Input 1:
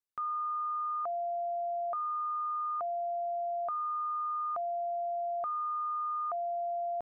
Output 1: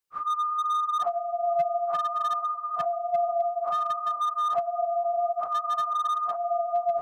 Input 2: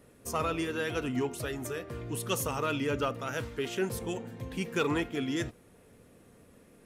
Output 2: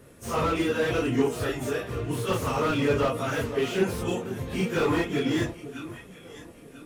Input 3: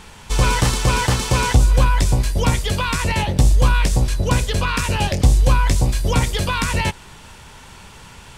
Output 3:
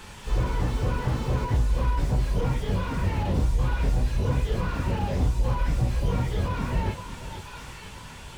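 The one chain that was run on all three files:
phase randomisation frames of 100 ms; compression, threshold -18 dBFS; echo whose repeats swap between lows and highs 495 ms, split 1 kHz, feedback 55%, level -12.5 dB; slew-rate limiter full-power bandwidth 33 Hz; normalise loudness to -27 LUFS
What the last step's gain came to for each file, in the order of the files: +7.5 dB, +7.0 dB, -1.5 dB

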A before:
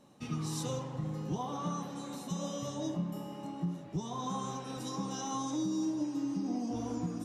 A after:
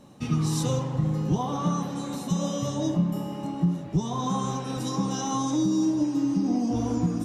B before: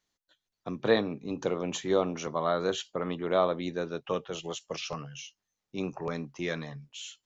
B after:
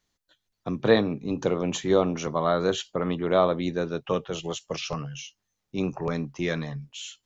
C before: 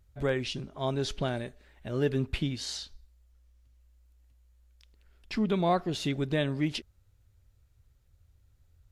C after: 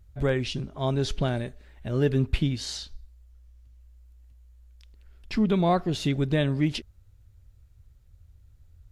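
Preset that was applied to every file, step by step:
bass shelf 170 Hz +8 dB; normalise loudness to -27 LUFS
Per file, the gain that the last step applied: +7.5 dB, +3.5 dB, +2.0 dB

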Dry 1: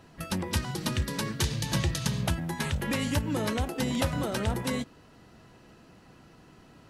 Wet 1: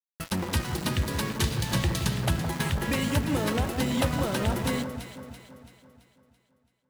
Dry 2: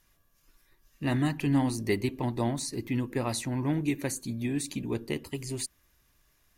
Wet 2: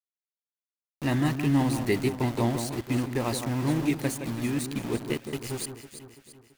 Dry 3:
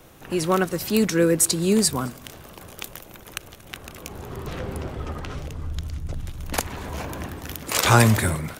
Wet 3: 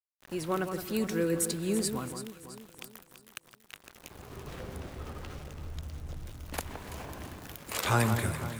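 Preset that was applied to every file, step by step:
dynamic bell 5.9 kHz, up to -4 dB, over -46 dBFS, Q 1.8; small samples zeroed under -35.5 dBFS; echo whose repeats swap between lows and highs 167 ms, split 1.6 kHz, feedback 68%, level -7.5 dB; peak normalisation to -12 dBFS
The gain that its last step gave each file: +2.0 dB, +2.0 dB, -10.5 dB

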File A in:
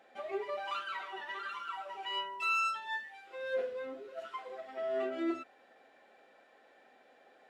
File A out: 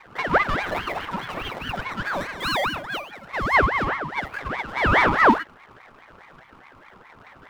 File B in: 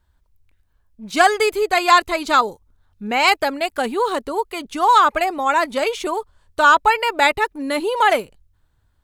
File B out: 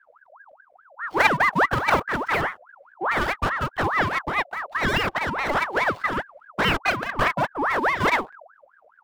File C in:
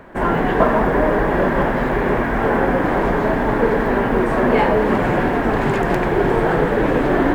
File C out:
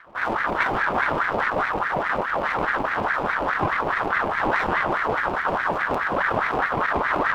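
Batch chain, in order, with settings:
median filter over 41 samples; tone controls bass +5 dB, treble -5 dB; ring modulator with a swept carrier 1.1 kHz, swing 50%, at 4.8 Hz; normalise loudness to -23 LUFS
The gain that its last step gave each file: +21.5 dB, +3.5 dB, -4.0 dB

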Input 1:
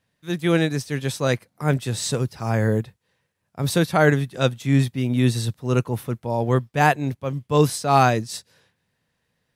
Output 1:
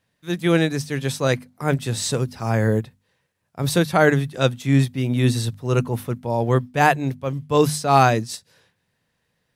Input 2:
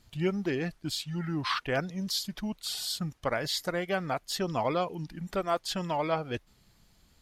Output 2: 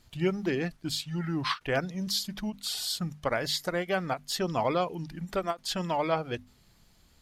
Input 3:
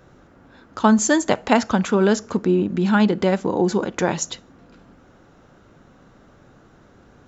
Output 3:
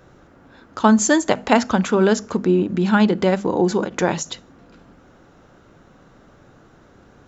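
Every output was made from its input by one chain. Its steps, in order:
hum notches 50/100/150/200/250 Hz; endings held to a fixed fall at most 370 dB/s; trim +1.5 dB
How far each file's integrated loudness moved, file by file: +1.0 LU, +1.0 LU, +1.5 LU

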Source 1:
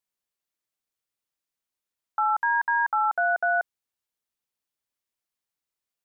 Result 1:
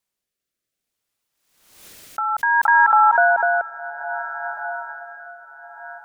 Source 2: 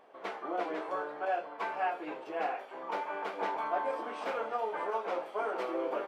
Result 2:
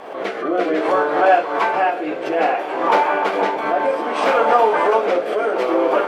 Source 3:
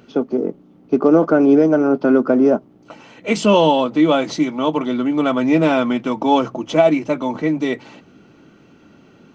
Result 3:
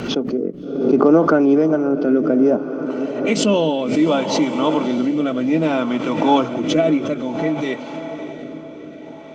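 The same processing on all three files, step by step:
echo that smears into a reverb 638 ms, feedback 64%, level -12 dB; rotary cabinet horn 0.6 Hz; swell ahead of each attack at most 63 dB/s; normalise loudness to -18 LUFS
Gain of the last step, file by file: +10.0 dB, +19.5 dB, 0.0 dB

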